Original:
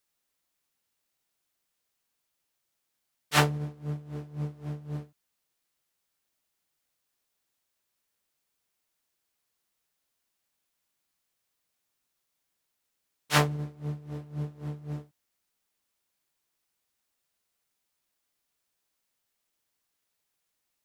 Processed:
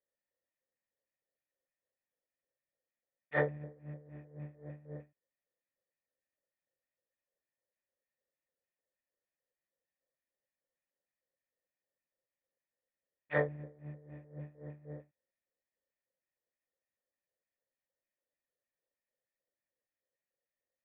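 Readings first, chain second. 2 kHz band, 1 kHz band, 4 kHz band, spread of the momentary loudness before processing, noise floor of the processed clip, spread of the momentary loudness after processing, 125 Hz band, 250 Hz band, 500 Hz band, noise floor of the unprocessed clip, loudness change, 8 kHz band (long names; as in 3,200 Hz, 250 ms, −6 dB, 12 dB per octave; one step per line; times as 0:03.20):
−7.0 dB, −13.5 dB, below −30 dB, 15 LU, below −85 dBFS, 17 LU, −12.0 dB, −11.0 dB, −1.0 dB, −81 dBFS, −8.5 dB, below −35 dB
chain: auto-filter notch square 3.3 Hz 470–2,600 Hz
formant resonators in series e
one half of a high-frequency compander decoder only
level +7.5 dB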